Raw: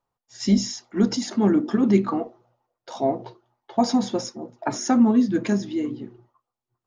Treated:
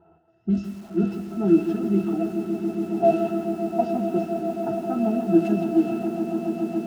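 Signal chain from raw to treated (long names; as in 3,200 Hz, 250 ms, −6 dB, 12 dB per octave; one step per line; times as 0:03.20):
spike at every zero crossing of −12.5 dBFS
in parallel at +1 dB: brickwall limiter −16.5 dBFS, peak gain reduction 10.5 dB
on the sum: automatic gain control gain up to 14 dB
resonances in every octave E, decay 0.13 s
low-pass that shuts in the quiet parts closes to 460 Hz, open at −15 dBFS
on a send: echo that builds up and dies away 140 ms, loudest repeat 8, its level −14 dB
on the sum: feedback echo at a low word length 164 ms, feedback 35%, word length 7 bits, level −11 dB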